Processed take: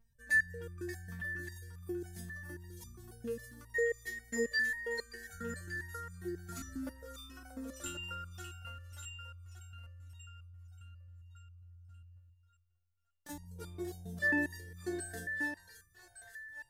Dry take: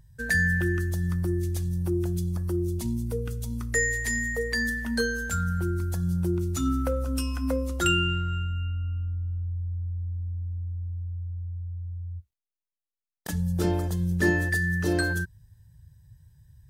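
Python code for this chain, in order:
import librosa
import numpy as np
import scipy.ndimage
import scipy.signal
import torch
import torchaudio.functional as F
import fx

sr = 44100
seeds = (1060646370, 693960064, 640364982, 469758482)

y = fx.echo_split(x, sr, split_hz=620.0, low_ms=147, high_ms=583, feedback_pct=52, wet_db=-3.5)
y = fx.resonator_held(y, sr, hz=7.4, low_hz=230.0, high_hz=1200.0)
y = F.gain(torch.from_numpy(y), 2.5).numpy()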